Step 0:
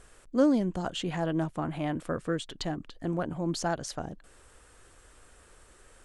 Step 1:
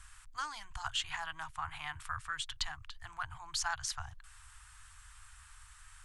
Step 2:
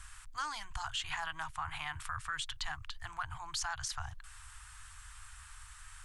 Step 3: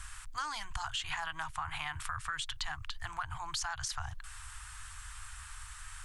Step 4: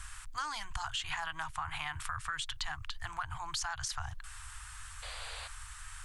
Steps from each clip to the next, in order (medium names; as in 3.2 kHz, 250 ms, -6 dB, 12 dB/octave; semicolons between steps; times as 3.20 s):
inverse Chebyshev band-stop 170–590 Hz, stop band 40 dB; trim +1.5 dB
peak limiter -31 dBFS, peak gain reduction 11 dB; trim +4 dB
compression 2.5:1, threshold -40 dBFS, peak gain reduction 5.5 dB; trim +5 dB
painted sound noise, 5.02–5.48 s, 450–4900 Hz -46 dBFS